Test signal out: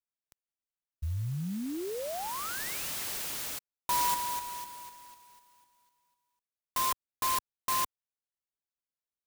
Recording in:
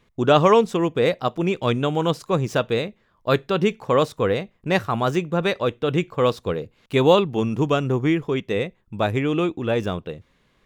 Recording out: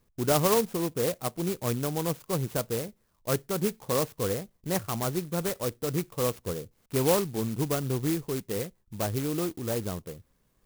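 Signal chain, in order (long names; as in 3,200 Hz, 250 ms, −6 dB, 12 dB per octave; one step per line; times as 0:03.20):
low-shelf EQ 110 Hz +6.5 dB
converter with an unsteady clock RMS 0.11 ms
level −9 dB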